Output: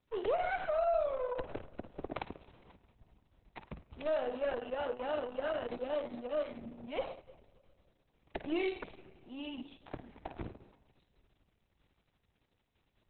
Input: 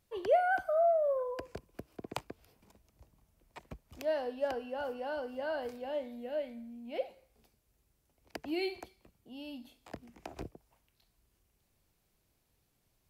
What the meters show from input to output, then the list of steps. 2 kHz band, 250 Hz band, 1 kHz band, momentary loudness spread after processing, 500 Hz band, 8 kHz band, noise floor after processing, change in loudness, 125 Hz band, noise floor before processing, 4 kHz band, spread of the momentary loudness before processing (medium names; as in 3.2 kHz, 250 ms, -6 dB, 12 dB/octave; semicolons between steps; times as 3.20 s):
-3.0 dB, +0.5 dB, -3.5 dB, 17 LU, -1.5 dB, no reading, -78 dBFS, -3.0 dB, +2.5 dB, -76 dBFS, -1.0 dB, 22 LU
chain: partial rectifier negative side -7 dB; flutter echo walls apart 9.1 m, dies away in 0.36 s; algorithmic reverb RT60 2.1 s, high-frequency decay 0.75×, pre-delay 15 ms, DRR 19 dB; peak limiter -28 dBFS, peak gain reduction 10.5 dB; trim +5.5 dB; Opus 6 kbps 48 kHz